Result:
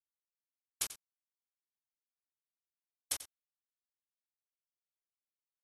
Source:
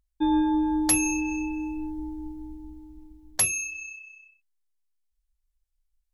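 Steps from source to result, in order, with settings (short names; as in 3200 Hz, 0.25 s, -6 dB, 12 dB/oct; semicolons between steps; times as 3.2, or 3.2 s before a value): spectral gate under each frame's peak -30 dB weak; HPF 770 Hz 6 dB/oct; tilt +4 dB/oct; compressor 16:1, threshold -32 dBFS, peak gain reduction 10 dB; bit-crush 6-bit; echo 97 ms -14 dB; speed mistake 44.1 kHz file played as 48 kHz; brick-wall FIR low-pass 12000 Hz; gain +2.5 dB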